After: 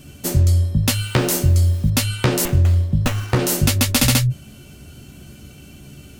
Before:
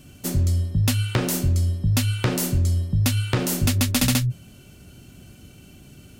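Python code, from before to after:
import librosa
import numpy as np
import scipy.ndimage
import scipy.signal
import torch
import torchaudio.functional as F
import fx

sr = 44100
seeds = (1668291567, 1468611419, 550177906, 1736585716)

y = fx.doubler(x, sr, ms=14.0, db=-6.0)
y = fx.quant_dither(y, sr, seeds[0], bits=8, dither='none', at=(0.92, 1.9))
y = fx.running_max(y, sr, window=9, at=(2.45, 3.39))
y = y * librosa.db_to_amplitude(4.5)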